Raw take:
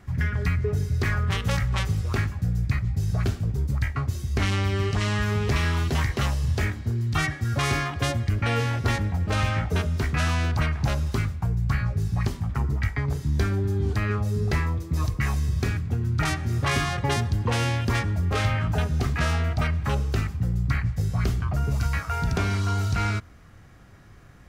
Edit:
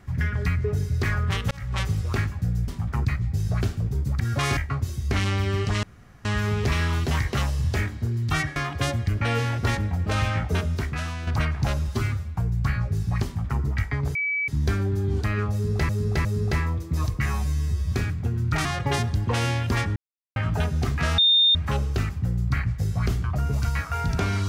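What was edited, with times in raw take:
1.51–1.81 s: fade in
5.09 s: insert room tone 0.42 s
7.40–7.77 s: move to 3.83 s
9.93–10.48 s: fade out quadratic, to -8.5 dB
11.09–11.41 s: stretch 1.5×
12.30–12.67 s: copy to 2.68 s
13.20 s: add tone 2.29 kHz -22.5 dBFS 0.33 s
14.25–14.61 s: loop, 3 plays
15.26–15.59 s: stretch 2×
16.32–16.83 s: delete
18.14–18.54 s: mute
19.36–19.73 s: bleep 3.64 kHz -14.5 dBFS

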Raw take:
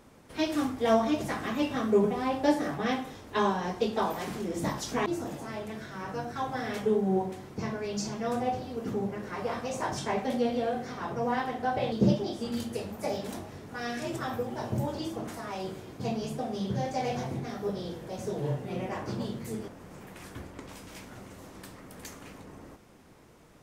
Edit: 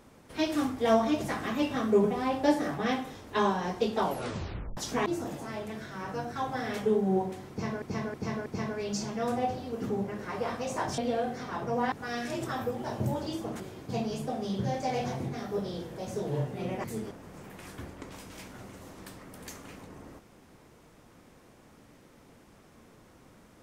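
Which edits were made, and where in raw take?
4.01 s: tape stop 0.76 s
7.50–7.82 s: loop, 4 plays
10.02–10.47 s: delete
11.41–13.64 s: delete
15.32–15.71 s: delete
18.95–19.41 s: delete

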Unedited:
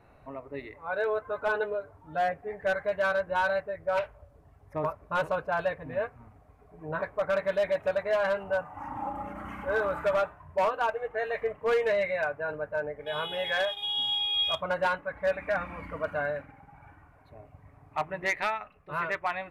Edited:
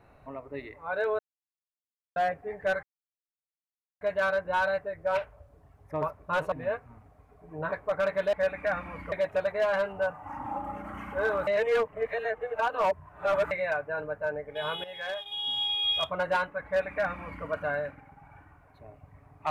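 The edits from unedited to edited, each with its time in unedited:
1.19–2.16 s: mute
2.83 s: insert silence 1.18 s
5.34–5.82 s: delete
9.98–12.02 s: reverse
13.35–14.21 s: fade in, from -13 dB
15.17–15.96 s: copy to 7.63 s

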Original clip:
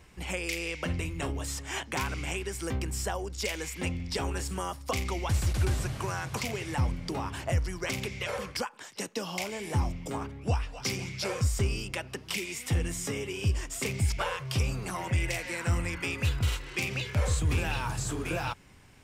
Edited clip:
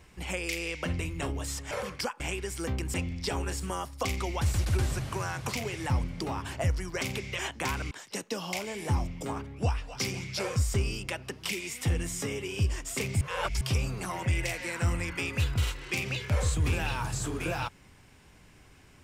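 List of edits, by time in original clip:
1.71–2.23 s: swap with 8.27–8.76 s
2.97–3.82 s: delete
14.06–14.46 s: reverse

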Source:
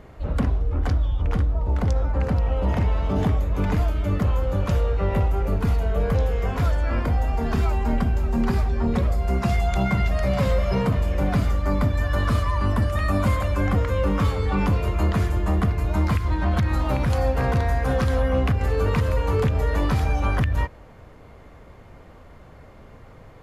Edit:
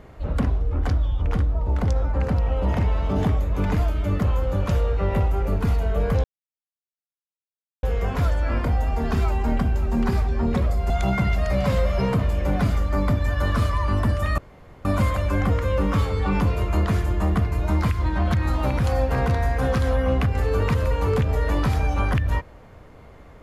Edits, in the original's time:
6.24 s: insert silence 1.59 s
9.31–9.63 s: delete
13.11 s: insert room tone 0.47 s

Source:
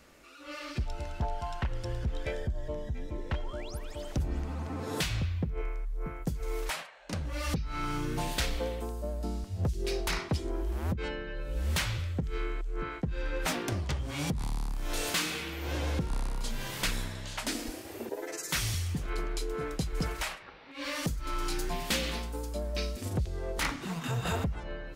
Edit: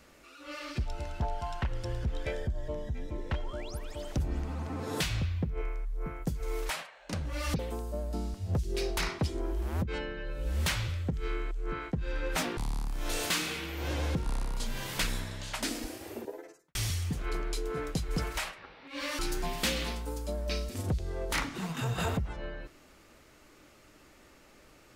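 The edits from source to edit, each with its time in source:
7.59–8.69 s: delete
13.67–14.41 s: delete
17.87–18.59 s: studio fade out
21.03–21.46 s: delete

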